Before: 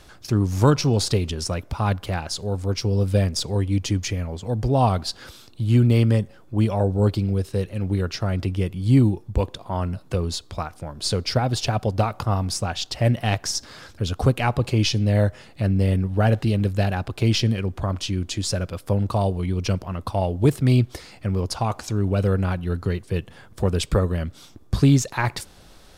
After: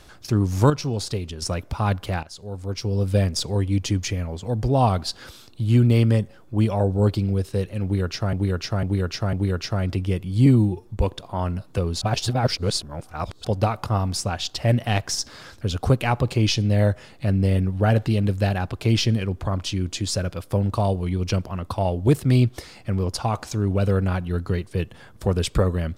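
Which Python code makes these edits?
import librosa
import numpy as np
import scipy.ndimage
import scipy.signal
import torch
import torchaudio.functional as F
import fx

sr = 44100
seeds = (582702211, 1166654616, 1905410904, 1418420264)

y = fx.edit(x, sr, fx.clip_gain(start_s=0.7, length_s=0.72, db=-6.0),
    fx.fade_in_from(start_s=2.23, length_s=0.97, floor_db=-14.5),
    fx.repeat(start_s=7.83, length_s=0.5, count=4),
    fx.stretch_span(start_s=8.96, length_s=0.27, factor=1.5),
    fx.reverse_span(start_s=10.38, length_s=1.43), tone=tone)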